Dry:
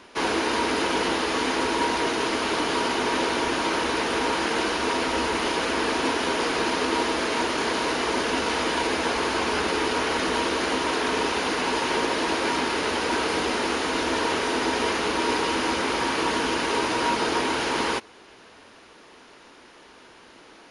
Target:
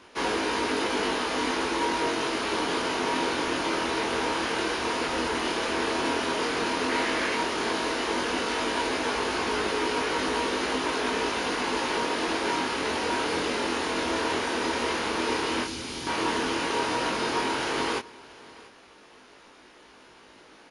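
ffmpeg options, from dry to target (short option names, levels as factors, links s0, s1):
-filter_complex "[0:a]asettb=1/sr,asplit=3[s0][s1][s2];[s0]atrim=end=6.894[s3];[s1]atrim=start=6.89:end=7.35,asetpts=PTS-STARTPTS,afade=t=in:d=0.004:c=qsin,afade=t=out:st=0.456:d=0.004:c=qsin,equalizer=f=2000:w=2:g=6[s4];[s2]atrim=start=7.346[s5];[s3][s4]acrossfade=d=0.004:c1=hsin:c2=qsin[s6];[s6][s5]acrossfade=d=0.004:c1=qsin:c2=hsin,asettb=1/sr,asplit=3[s7][s8][s9];[s7]atrim=end=15.644[s10];[s8]atrim=start=15.64:end=16.07,asetpts=PTS-STARTPTS,afade=t=in:d=0.004:c=qsin,afade=t=out:st=0.426:d=0.004:c=qsin,acrossover=split=260|3000[s11][s12][s13];[s12]acompressor=threshold=0.00631:ratio=3[s14];[s11][s14][s13]amix=inputs=3:normalize=0[s15];[s9]atrim=start=16.066[s16];[s10][s15]acrossfade=d=0.004:c1=hsin:c2=qsin[s17];[s17][s16]acrossfade=d=0.004:c1=qsin:c2=hsin,flanger=delay=19:depth=5.9:speed=0.1,aecho=1:1:684:0.0841"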